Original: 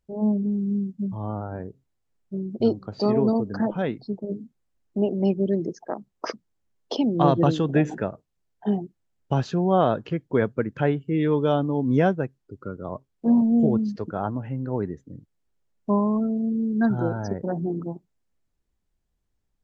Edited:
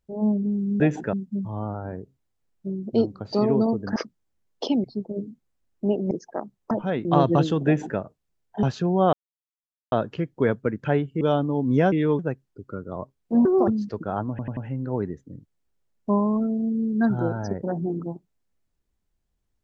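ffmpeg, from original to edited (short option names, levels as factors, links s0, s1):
-filter_complex "[0:a]asplit=18[s0][s1][s2][s3][s4][s5][s6][s7][s8][s9][s10][s11][s12][s13][s14][s15][s16][s17];[s0]atrim=end=0.802[s18];[s1]atrim=start=7.738:end=8.072[s19];[s2]atrim=start=0.798:end=3.632[s20];[s3]atrim=start=6.248:end=7.132[s21];[s4]atrim=start=3.968:end=5.242[s22];[s5]atrim=start=5.648:end=6.252[s23];[s6]atrim=start=3.628:end=3.972[s24];[s7]atrim=start=7.128:end=8.712[s25];[s8]atrim=start=9.348:end=9.85,asetpts=PTS-STARTPTS,afade=t=out:st=0.498:d=0.004:c=hsin,apad=pad_dur=0.79[s26];[s9]atrim=start=9.85:end=11.142,asetpts=PTS-STARTPTS,afade=t=in:d=0.004:c=hsin[s27];[s10]atrim=start=11.408:end=12.122[s28];[s11]atrim=start=11.138:end=11.412[s29];[s12]atrim=start=12.118:end=13.384[s30];[s13]atrim=start=13.38:end=13.75,asetpts=PTS-STARTPTS,asetrate=71442,aresample=44100,atrim=end_sample=10072,asetpts=PTS-STARTPTS[s31];[s14]atrim=start=13.746:end=14.462[s32];[s15]atrim=start=14.368:end=14.462[s33];[s16]atrim=start=14.368:end=14.462[s34];[s17]atrim=start=14.368[s35];[s18][s19]acrossfade=d=0.004:c1=hsin:c2=hsin[s36];[s36][s20]acrossfade=d=0.004:c1=hsin:c2=hsin[s37];[s37][s21]acrossfade=d=0.004:c1=hsin:c2=hsin[s38];[s38][s22]acrossfade=d=0.004:c1=hsin:c2=hsin[s39];[s39][s23]acrossfade=d=0.004:c1=hsin:c2=hsin[s40];[s40][s24]acrossfade=d=0.004:c1=hsin:c2=hsin[s41];[s41][s25]acrossfade=d=0.004:c1=hsin:c2=hsin[s42];[s26][s27]concat=n=2:v=0:a=1[s43];[s42][s43]acrossfade=d=0.004:c1=hsin:c2=hsin[s44];[s44][s28]acrossfade=d=0.004:c1=hsin:c2=hsin[s45];[s45][s29]acrossfade=d=0.004:c1=hsin:c2=hsin[s46];[s46][s30]acrossfade=d=0.004:c1=hsin:c2=hsin[s47];[s47][s31]acrossfade=d=0.004:c1=hsin:c2=hsin[s48];[s48][s32]acrossfade=d=0.004:c1=hsin:c2=hsin[s49];[s49][s33]acrossfade=d=0.004:c1=hsin:c2=hsin[s50];[s50][s34]acrossfade=d=0.004:c1=hsin:c2=hsin[s51];[s51][s35]acrossfade=d=0.004:c1=hsin:c2=hsin"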